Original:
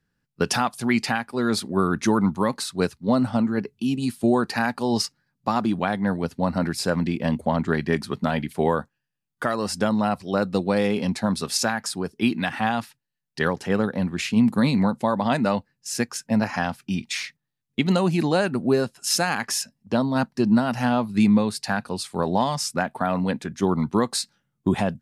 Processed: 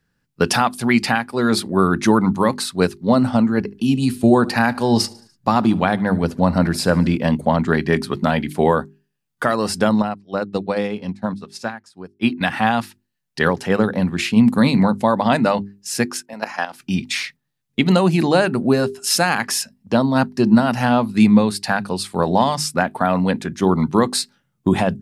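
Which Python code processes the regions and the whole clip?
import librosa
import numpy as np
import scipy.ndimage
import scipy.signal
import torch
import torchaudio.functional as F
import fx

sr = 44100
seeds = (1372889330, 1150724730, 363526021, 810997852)

y = fx.chain(x, sr, fx.low_shelf(hz=90.0, db=10.0),
    fx.echo_feedback(ms=73, feedback_pct=53, wet_db=-22.0), at=(3.6, 7.17))
y = fx.chain(y, sr, fx.high_shelf(hz=8700.0, db=-12.0),
    fx.upward_expand(threshold_db=-34.0, expansion=2.5), at=(10.02, 12.41))
y = fx.chain(y, sr, fx.highpass(hz=420.0, slope=12),
    fx.level_steps(step_db=13), at=(16.22, 16.8))
y = fx.hum_notches(y, sr, base_hz=50, count=8)
y = fx.dynamic_eq(y, sr, hz=6400.0, q=2.3, threshold_db=-46.0, ratio=4.0, max_db=-4)
y = F.gain(torch.from_numpy(y), 6.0).numpy()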